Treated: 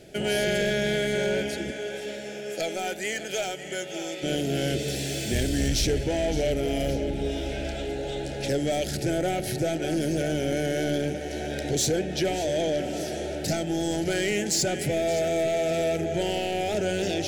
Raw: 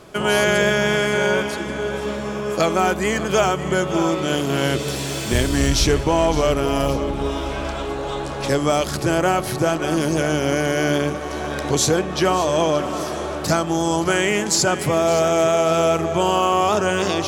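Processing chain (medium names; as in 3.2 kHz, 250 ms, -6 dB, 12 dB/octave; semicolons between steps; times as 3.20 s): 1.70–4.22 s: high-pass 510 Hz -> 1.3 kHz 6 dB/octave; saturation -15 dBFS, distortion -13 dB; Butterworth band-stop 1.1 kHz, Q 1.2; trim -3.5 dB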